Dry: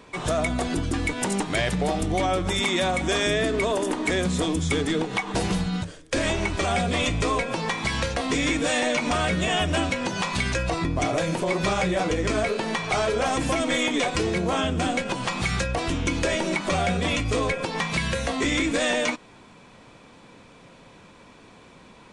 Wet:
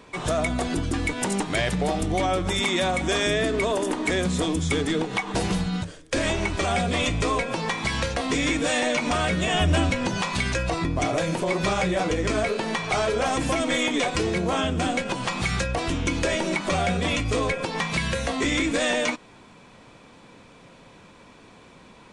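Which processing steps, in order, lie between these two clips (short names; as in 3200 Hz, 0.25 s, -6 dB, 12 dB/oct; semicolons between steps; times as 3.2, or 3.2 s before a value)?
9.54–10.19 low shelf 160 Hz +9 dB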